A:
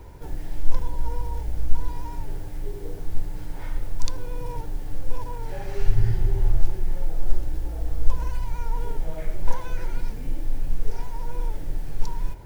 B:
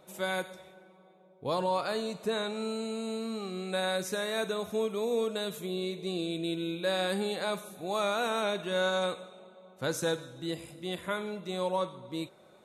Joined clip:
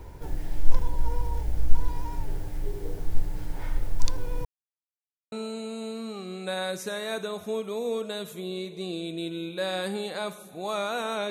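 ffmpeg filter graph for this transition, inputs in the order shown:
-filter_complex "[0:a]apad=whole_dur=11.3,atrim=end=11.3,asplit=2[a][b];[a]atrim=end=4.45,asetpts=PTS-STARTPTS,afade=t=out:st=4.446:d=0.004:c=hsin[c];[b]atrim=start=4.45:end=5.32,asetpts=PTS-STARTPTS,volume=0[d];[1:a]atrim=start=2.58:end=8.56,asetpts=PTS-STARTPTS,afade=t=in:d=0.004:c=hsin[e];[c][d][e]concat=n=3:v=0:a=1"

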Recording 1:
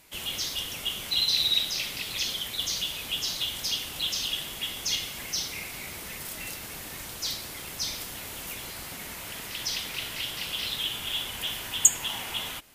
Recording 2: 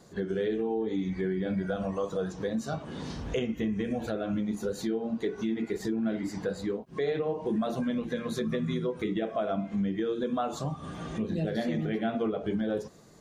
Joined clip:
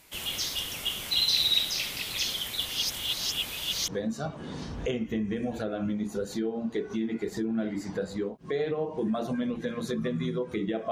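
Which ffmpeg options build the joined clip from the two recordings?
-filter_complex "[0:a]apad=whole_dur=10.91,atrim=end=10.91,asplit=2[a][b];[a]atrim=end=2.662[c];[b]atrim=start=2.658:end=3.882,asetpts=PTS-STARTPTS,areverse[d];[1:a]atrim=start=2.358:end=9.39[e];[c][d]acrossfade=d=0.004:c1=hsin:c2=hsin[f];[f][e]acrossfade=d=0.004:c1=hsin:c2=hsin"

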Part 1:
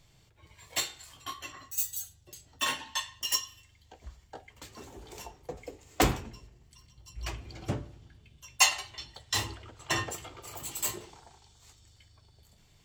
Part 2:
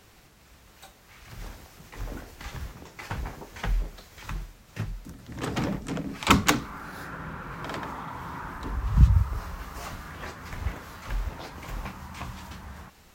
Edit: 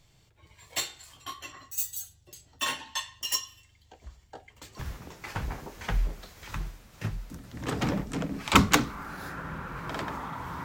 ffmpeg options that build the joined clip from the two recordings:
-filter_complex "[0:a]apad=whole_dur=10.64,atrim=end=10.64,atrim=end=4.792[a];[1:a]atrim=start=2.538:end=8.39[b];[a][b]acrossfade=d=0.004:c1=hsin:c2=hsin"

